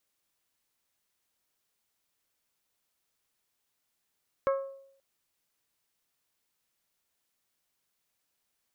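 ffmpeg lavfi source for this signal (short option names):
-f lavfi -i "aevalsrc='0.0794*pow(10,-3*t/0.7)*sin(2*PI*545*t)+0.0398*pow(10,-3*t/0.431)*sin(2*PI*1090*t)+0.02*pow(10,-3*t/0.379)*sin(2*PI*1308*t)+0.01*pow(10,-3*t/0.324)*sin(2*PI*1635*t)+0.00501*pow(10,-3*t/0.265)*sin(2*PI*2180*t)':d=0.53:s=44100"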